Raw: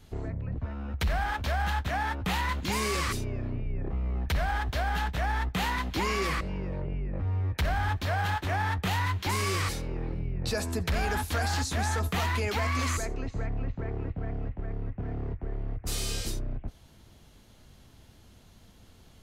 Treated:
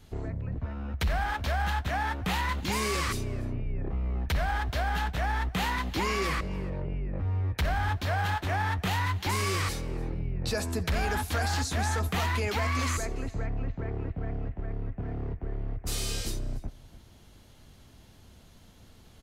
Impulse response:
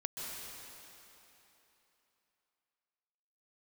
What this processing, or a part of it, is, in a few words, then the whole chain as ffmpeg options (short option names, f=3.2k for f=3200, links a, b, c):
ducked delay: -filter_complex "[0:a]asplit=3[a][b][c];[b]adelay=291,volume=-5dB[d];[c]apad=whole_len=860677[e];[d][e]sidechaincompress=threshold=-50dB:ratio=4:attack=16:release=482[f];[a][f]amix=inputs=2:normalize=0"